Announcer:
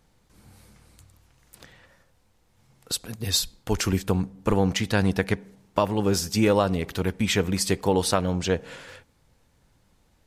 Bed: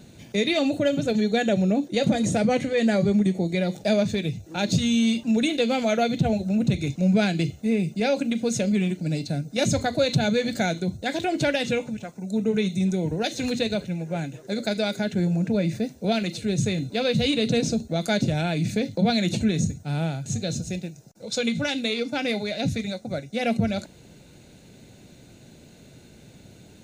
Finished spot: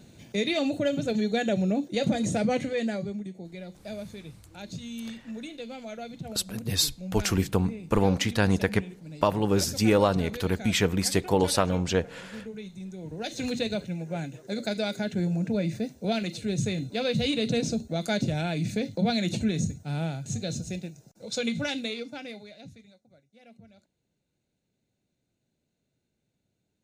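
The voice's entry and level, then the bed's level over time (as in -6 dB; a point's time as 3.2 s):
3.45 s, -1.0 dB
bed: 2.68 s -4 dB
3.26 s -16.5 dB
12.92 s -16.5 dB
13.39 s -4 dB
21.74 s -4 dB
23.11 s -30 dB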